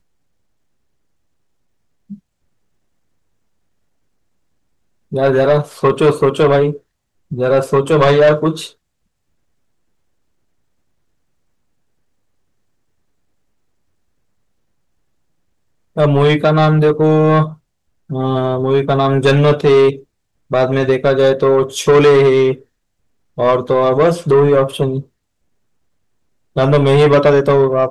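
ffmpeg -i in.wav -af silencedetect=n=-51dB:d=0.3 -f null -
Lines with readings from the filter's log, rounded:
silence_start: 0.00
silence_end: 2.09 | silence_duration: 2.09
silence_start: 2.19
silence_end: 5.11 | silence_duration: 2.92
silence_start: 6.81
silence_end: 7.31 | silence_duration: 0.49
silence_start: 8.75
silence_end: 15.96 | silence_duration: 7.21
silence_start: 17.59
silence_end: 18.09 | silence_duration: 0.50
silence_start: 20.05
silence_end: 20.50 | silence_duration: 0.45
silence_start: 22.65
silence_end: 23.37 | silence_duration: 0.72
silence_start: 25.08
silence_end: 26.55 | silence_duration: 1.47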